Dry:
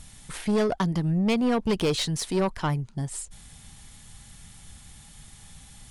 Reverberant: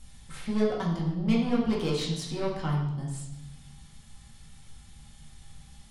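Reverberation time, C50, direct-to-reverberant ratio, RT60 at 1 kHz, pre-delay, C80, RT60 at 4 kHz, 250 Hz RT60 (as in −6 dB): 0.95 s, 4.0 dB, −4.0 dB, 0.95 s, 4 ms, 7.0 dB, 1.0 s, 1.3 s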